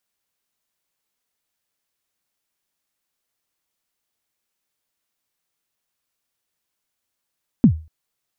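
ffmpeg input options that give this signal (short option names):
-f lavfi -i "aevalsrc='0.631*pow(10,-3*t/0.33)*sin(2*PI*(270*0.086/log(79/270)*(exp(log(79/270)*min(t,0.086)/0.086)-1)+79*max(t-0.086,0)))':d=0.24:s=44100"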